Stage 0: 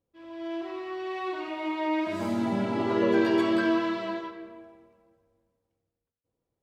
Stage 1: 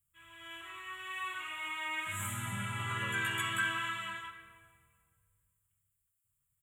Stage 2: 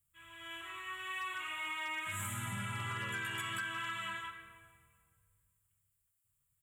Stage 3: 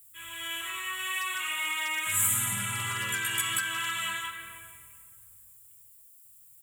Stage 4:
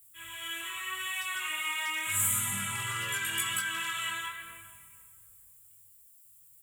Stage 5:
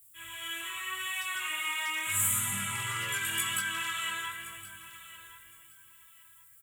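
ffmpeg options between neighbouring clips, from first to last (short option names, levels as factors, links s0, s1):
-af "firequalizer=gain_entry='entry(130,0);entry(260,-29);entry(710,-24);entry(1200,-1);entry(3300,1);entry(4900,-29);entry(7300,14)':delay=0.05:min_phase=1,volume=1.19"
-af "acompressor=threshold=0.0158:ratio=16,asoftclip=type=hard:threshold=0.0224,volume=1.12"
-filter_complex "[0:a]asplit=2[s0][s1];[s1]acompressor=threshold=0.00398:ratio=6,volume=1.12[s2];[s0][s2]amix=inputs=2:normalize=0,crystalizer=i=5:c=0"
-af "flanger=delay=20:depth=3.6:speed=0.84,volume=1.12"
-af "aecho=1:1:1066|2132:0.158|0.0365"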